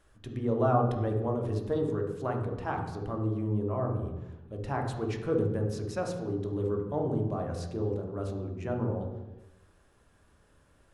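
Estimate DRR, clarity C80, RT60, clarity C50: 1.5 dB, 8.0 dB, 1.1 s, 5.5 dB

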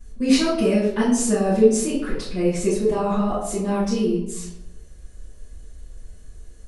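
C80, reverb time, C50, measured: 6.5 dB, 0.90 s, 2.5 dB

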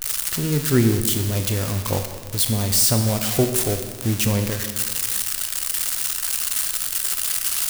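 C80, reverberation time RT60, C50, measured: 8.5 dB, 1.7 s, 7.5 dB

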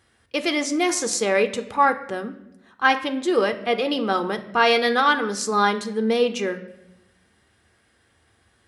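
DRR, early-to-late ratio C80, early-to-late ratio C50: 8.5 dB, 16.0 dB, 13.5 dB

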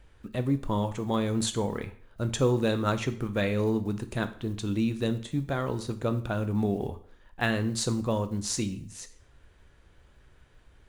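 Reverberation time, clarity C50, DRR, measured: 0.55 s, 14.5 dB, 9.5 dB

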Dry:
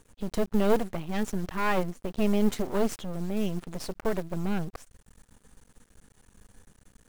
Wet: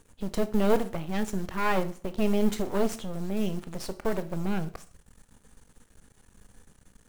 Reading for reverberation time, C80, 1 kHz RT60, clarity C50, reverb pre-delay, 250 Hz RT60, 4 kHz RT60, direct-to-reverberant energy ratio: 0.45 s, 20.0 dB, 0.45 s, 16.5 dB, 15 ms, 0.50 s, 0.45 s, 11.5 dB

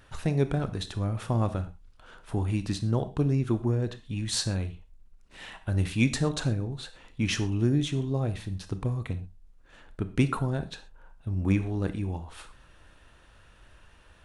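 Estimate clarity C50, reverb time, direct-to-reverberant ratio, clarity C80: 14.0 dB, non-exponential decay, 10.5 dB, 18.5 dB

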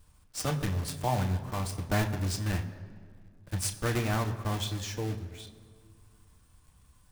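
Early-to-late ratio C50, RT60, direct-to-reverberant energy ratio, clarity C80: 12.0 dB, 1.9 s, 3.0 dB, 13.0 dB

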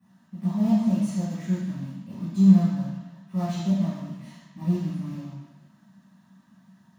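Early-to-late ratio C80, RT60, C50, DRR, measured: 1.5 dB, 1.2 s, −1.5 dB, −15.5 dB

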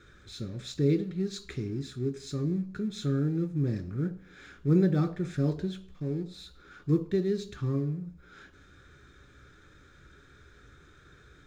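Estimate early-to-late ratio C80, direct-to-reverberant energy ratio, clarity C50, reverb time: 19.5 dB, 7.5 dB, 16.5 dB, 0.55 s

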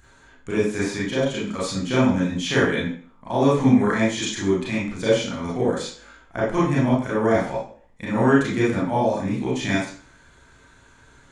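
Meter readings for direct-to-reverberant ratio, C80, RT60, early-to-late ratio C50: −8.0 dB, 7.0 dB, 0.45 s, 1.5 dB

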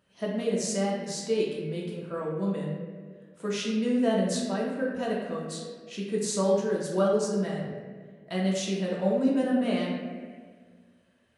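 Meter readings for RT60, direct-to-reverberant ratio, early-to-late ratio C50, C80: 1.7 s, −4.0 dB, 1.5 dB, 3.5 dB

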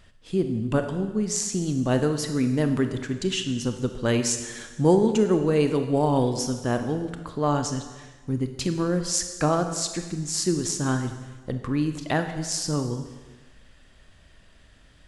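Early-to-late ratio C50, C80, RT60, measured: 8.5 dB, 10.0 dB, 1.2 s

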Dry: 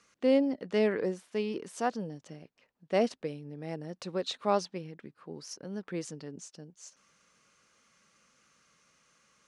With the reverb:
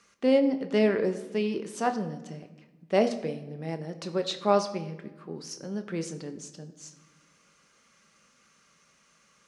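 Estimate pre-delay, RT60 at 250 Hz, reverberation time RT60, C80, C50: 5 ms, 1.7 s, 1.1 s, 14.5 dB, 12.5 dB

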